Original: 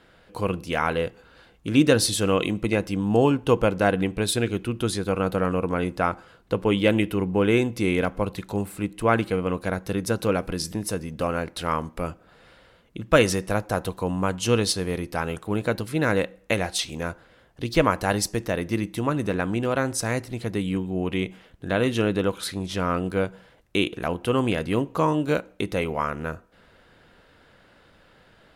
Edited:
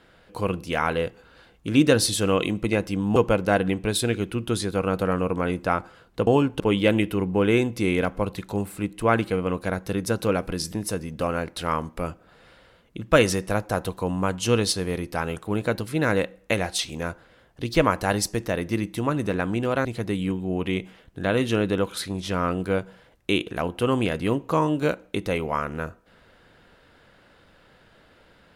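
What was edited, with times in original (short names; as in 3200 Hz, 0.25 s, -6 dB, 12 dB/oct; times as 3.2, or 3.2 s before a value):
3.16–3.49 move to 6.6
19.85–20.31 cut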